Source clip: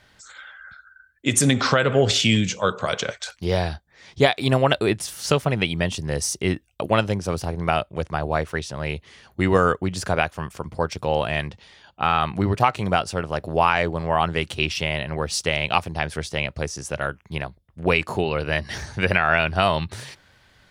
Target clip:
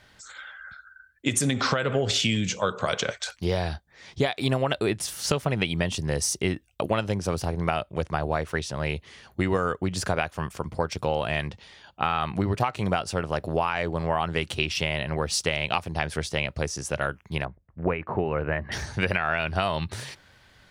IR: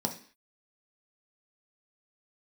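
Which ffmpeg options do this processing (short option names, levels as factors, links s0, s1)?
-filter_complex "[0:a]acompressor=threshold=0.1:ratio=10,asettb=1/sr,asplit=3[s0][s1][s2];[s0]atrim=end=17.454[s3];[s1]atrim=start=17.45:end=18.72,asetpts=PTS-STARTPTS,afade=t=in:d=0.004:c=qsin,afade=t=out:st=1.266:d=0.004:c=qsin,lowpass=f=2000:w=0.5412,lowpass=f=2000:w=1.3066[s4];[s2]atrim=start=18.716[s5];[s3][s4]acrossfade=d=0.004:c1=hsin:c2=qsin[s6];[s6][s5]acrossfade=d=0.004:c1=qsin:c2=hsin"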